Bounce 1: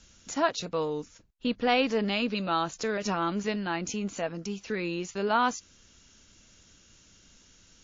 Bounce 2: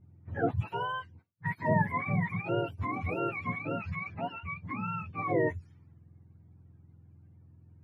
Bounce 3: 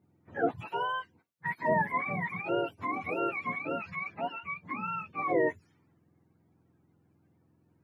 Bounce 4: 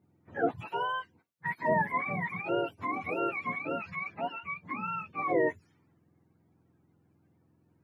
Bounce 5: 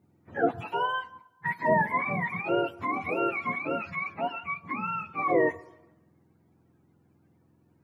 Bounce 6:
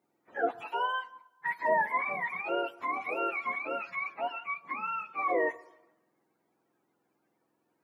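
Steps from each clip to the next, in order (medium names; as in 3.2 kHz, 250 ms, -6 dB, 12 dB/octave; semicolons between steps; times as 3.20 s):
spectrum inverted on a logarithmic axis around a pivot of 680 Hz; level-controlled noise filter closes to 680 Hz, open at -27 dBFS; trim -2.5 dB
high-pass 280 Hz 12 dB/octave; trim +2 dB
no audible change
on a send at -20.5 dB: peaking EQ 1 kHz +9 dB 1.4 oct + reverberation RT60 1.0 s, pre-delay 7 ms; on the sum: trim +3.5 dB
high-pass 480 Hz 12 dB/octave; trim -2 dB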